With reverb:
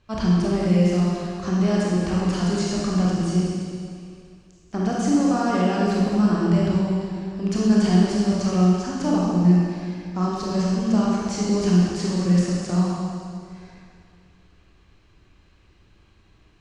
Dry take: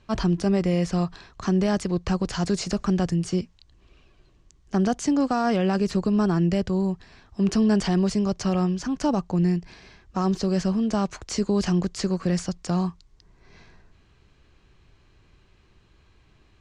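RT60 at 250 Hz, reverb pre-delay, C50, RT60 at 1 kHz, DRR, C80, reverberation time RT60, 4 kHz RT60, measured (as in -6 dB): 2.2 s, 17 ms, -3.5 dB, 2.2 s, -5.5 dB, -0.5 dB, 2.2 s, 2.1 s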